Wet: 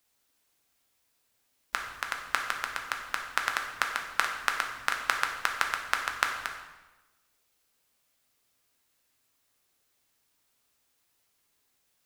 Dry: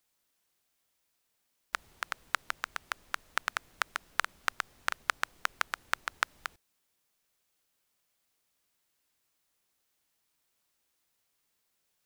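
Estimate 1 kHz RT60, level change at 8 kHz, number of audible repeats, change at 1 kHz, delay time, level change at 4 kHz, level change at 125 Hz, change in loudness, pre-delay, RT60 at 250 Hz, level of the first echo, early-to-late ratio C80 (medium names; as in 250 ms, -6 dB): 1.1 s, +4.5 dB, no echo, +4.5 dB, no echo, +4.5 dB, no reading, +4.5 dB, 4 ms, 1.2 s, no echo, 7.5 dB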